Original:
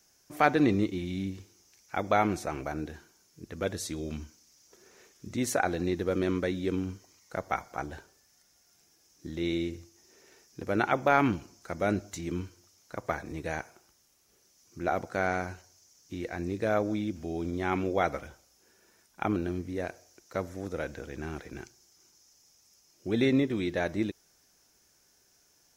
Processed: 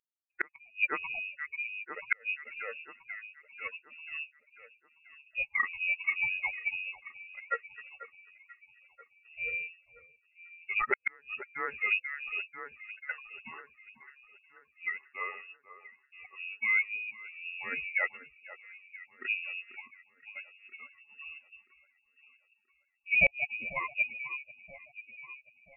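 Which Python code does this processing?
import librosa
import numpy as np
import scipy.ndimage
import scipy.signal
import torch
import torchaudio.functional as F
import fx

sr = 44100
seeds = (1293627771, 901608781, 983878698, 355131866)

y = fx.bin_expand(x, sr, power=3.0)
y = fx.freq_invert(y, sr, carrier_hz=2700)
y = fx.peak_eq(y, sr, hz=460.0, db=7.0, octaves=0.4)
y = fx.echo_alternate(y, sr, ms=490, hz=1700.0, feedback_pct=61, wet_db=-13.0)
y = fx.gate_flip(y, sr, shuts_db=-20.0, range_db=-38)
y = F.gain(torch.from_numpy(y), 7.5).numpy()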